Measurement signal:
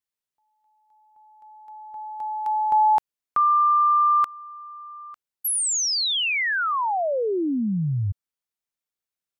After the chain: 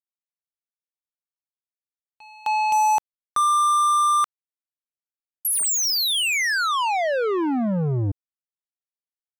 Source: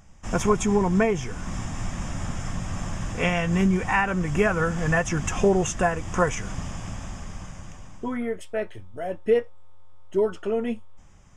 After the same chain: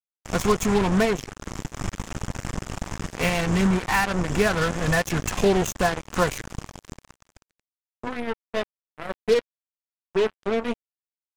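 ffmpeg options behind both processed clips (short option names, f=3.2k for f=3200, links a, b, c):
-af "acrusher=bits=3:mix=0:aa=0.5"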